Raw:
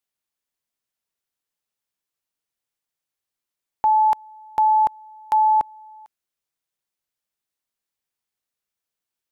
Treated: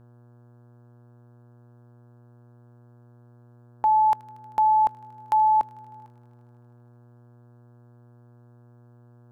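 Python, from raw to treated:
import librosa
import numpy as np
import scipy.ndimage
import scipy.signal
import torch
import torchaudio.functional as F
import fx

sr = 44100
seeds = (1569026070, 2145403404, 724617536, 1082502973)

y = fx.echo_wet_highpass(x, sr, ms=78, feedback_pct=83, hz=1600.0, wet_db=-19)
y = fx.dmg_buzz(y, sr, base_hz=120.0, harmonics=14, level_db=-50.0, tilt_db=-8, odd_only=False)
y = F.gain(torch.from_numpy(y), -2.5).numpy()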